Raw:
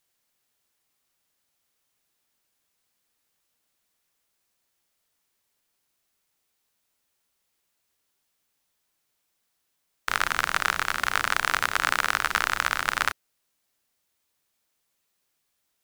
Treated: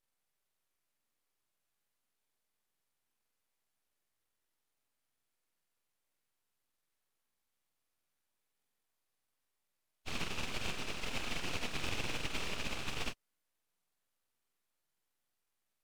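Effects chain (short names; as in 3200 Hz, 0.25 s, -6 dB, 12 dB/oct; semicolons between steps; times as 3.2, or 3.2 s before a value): nonlinear frequency compression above 1000 Hz 1.5:1; full-wave rectifier; gain -8.5 dB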